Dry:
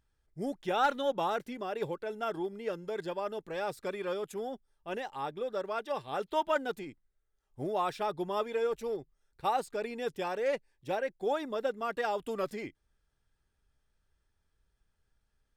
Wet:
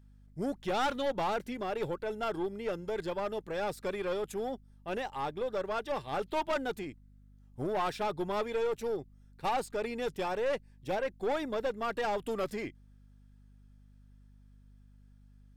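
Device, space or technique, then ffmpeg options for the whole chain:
valve amplifier with mains hum: -af "aeval=exprs='(tanh(31.6*val(0)+0.3)-tanh(0.3))/31.6':channel_layout=same,aeval=exprs='val(0)+0.001*(sin(2*PI*50*n/s)+sin(2*PI*2*50*n/s)/2+sin(2*PI*3*50*n/s)/3+sin(2*PI*4*50*n/s)/4+sin(2*PI*5*50*n/s)/5)':channel_layout=same,volume=3.5dB"

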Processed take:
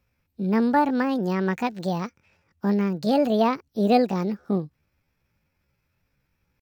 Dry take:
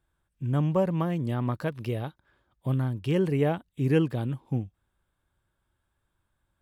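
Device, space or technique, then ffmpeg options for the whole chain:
chipmunk voice: -af "asetrate=68011,aresample=44100,atempo=0.64842,volume=4dB"

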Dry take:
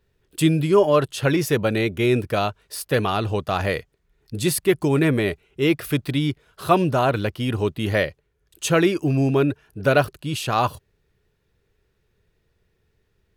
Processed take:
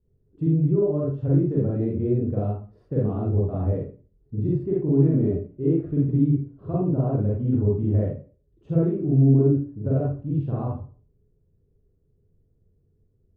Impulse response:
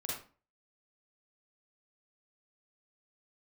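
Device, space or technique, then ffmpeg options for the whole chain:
television next door: -filter_complex "[0:a]acompressor=threshold=-19dB:ratio=3,lowpass=300[link_01];[1:a]atrim=start_sample=2205[link_02];[link_01][link_02]afir=irnorm=-1:irlink=0,volume=2.5dB"

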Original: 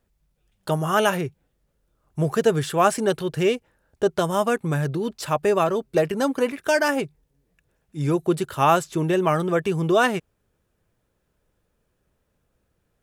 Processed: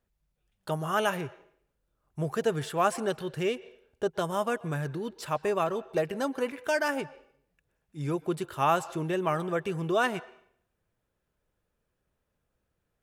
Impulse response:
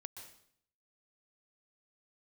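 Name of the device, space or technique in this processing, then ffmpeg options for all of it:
filtered reverb send: -filter_complex "[0:a]asplit=2[link_01][link_02];[link_02]highpass=470,lowpass=4300[link_03];[1:a]atrim=start_sample=2205[link_04];[link_03][link_04]afir=irnorm=-1:irlink=0,volume=-5.5dB[link_05];[link_01][link_05]amix=inputs=2:normalize=0,volume=-8.5dB"

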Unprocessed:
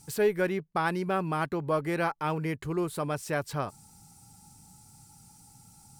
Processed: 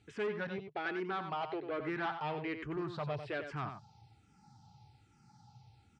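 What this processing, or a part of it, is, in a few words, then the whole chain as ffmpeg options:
barber-pole phaser into a guitar amplifier: -filter_complex "[0:a]asettb=1/sr,asplit=3[link_01][link_02][link_03];[link_01]atrim=end=0.584[link_04];[link_02]atrim=start=0.58:end=1.8,asetpts=PTS-STARTPTS,afade=type=in:duration=0.004:curve=qsin,afade=type=out:start_time=1.216:duration=0.004:curve=qsin,highpass=250[link_05];[link_03]atrim=start=1.796[link_06];[link_04][link_05]acrossfade=duration=0.004:curve1=hsin:curve2=qsin[link_07];[link_07][link_06]acrossfade=duration=0.004:curve1=qsin:curve2=hsin,asplit=2[link_08][link_09];[link_09]afreqshift=-1.2[link_10];[link_08][link_10]amix=inputs=2:normalize=1,asoftclip=type=tanh:threshold=-29.5dB,highpass=76,equalizer=frequency=120:width_type=q:width=4:gain=4,equalizer=frequency=170:width_type=q:width=4:gain=-7,equalizer=frequency=260:width_type=q:width=4:gain=-6,equalizer=frequency=520:width_type=q:width=4:gain=-5,equalizer=frequency=1100:width_type=q:width=4:gain=-3,lowpass=frequency=4100:width=0.5412,lowpass=frequency=4100:width=1.3066,asplit=2[link_11][link_12];[link_12]adelay=93.29,volume=-8dB,highshelf=frequency=4000:gain=-2.1[link_13];[link_11][link_13]amix=inputs=2:normalize=0"

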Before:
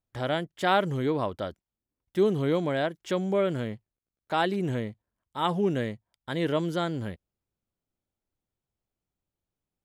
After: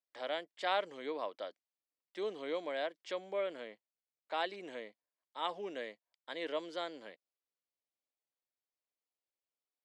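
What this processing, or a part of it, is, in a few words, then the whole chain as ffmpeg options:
phone speaker on a table: -filter_complex "[0:a]asettb=1/sr,asplit=3[link_01][link_02][link_03];[link_01]atrim=end=3.134[link_04];[link_02]atrim=start=3.13:end=4.41,asetpts=PTS-STARTPTS,afade=type=in:duration=0.004:curve=qsin,afade=type=out:start_time=1.276:duration=0.004:curve=qsin,equalizer=frequency=6000:width_type=o:width=0.9:gain=-5[link_05];[link_03]atrim=start=4.406[link_06];[link_04][link_05]acrossfade=duration=0.004:curve1=hsin:curve2=qsin[link_07];[link_07][link_06]acrossfade=duration=0.004:curve1=qsin:curve2=hsin,highpass=frequency=360:width=0.5412,highpass=frequency=360:width=1.3066,equalizer=frequency=380:width_type=q:width=4:gain=-8,equalizer=frequency=840:width_type=q:width=4:gain=-3,equalizer=frequency=1400:width_type=q:width=4:gain=-5,equalizer=frequency=2200:width_type=q:width=4:gain=3,equalizer=frequency=4500:width_type=q:width=4:gain=4,equalizer=frequency=6500:width_type=q:width=4:gain=-5,lowpass=frequency=7500:width=0.5412,lowpass=frequency=7500:width=1.3066,volume=-7.5dB"

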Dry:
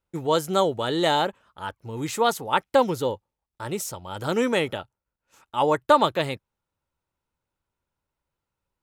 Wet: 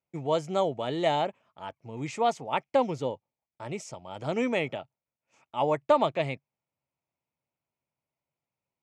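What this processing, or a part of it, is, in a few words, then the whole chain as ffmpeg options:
car door speaker: -af "highpass=110,equalizer=frequency=140:width_type=q:width=4:gain=8,equalizer=frequency=250:width_type=q:width=4:gain=4,equalizer=frequency=670:width_type=q:width=4:gain=9,equalizer=frequency=1500:width_type=q:width=4:gain=-7,equalizer=frequency=2300:width_type=q:width=4:gain=9,equalizer=frequency=3900:width_type=q:width=4:gain=-6,lowpass=frequency=7100:width=0.5412,lowpass=frequency=7100:width=1.3066,volume=-7.5dB"

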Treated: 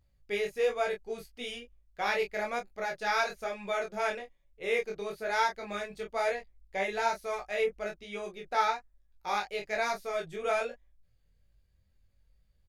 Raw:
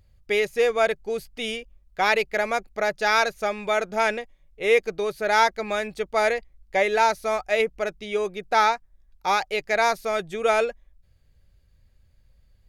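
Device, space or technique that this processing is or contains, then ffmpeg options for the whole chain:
double-tracked vocal: -filter_complex "[0:a]asplit=2[link_01][link_02];[link_02]adelay=25,volume=-4.5dB[link_03];[link_01][link_03]amix=inputs=2:normalize=0,flanger=delay=15.5:depth=5.1:speed=1.1,volume=-7.5dB"

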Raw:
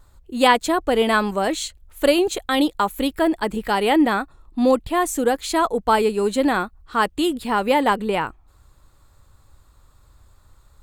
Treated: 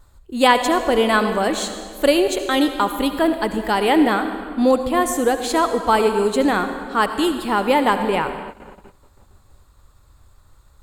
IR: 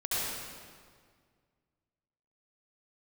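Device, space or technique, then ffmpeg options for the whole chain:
keyed gated reverb: -filter_complex "[0:a]asplit=3[link_01][link_02][link_03];[1:a]atrim=start_sample=2205[link_04];[link_02][link_04]afir=irnorm=-1:irlink=0[link_05];[link_03]apad=whole_len=477439[link_06];[link_05][link_06]sidechaingate=range=-33dB:threshold=-50dB:ratio=16:detection=peak,volume=-14.5dB[link_07];[link_01][link_07]amix=inputs=2:normalize=0"

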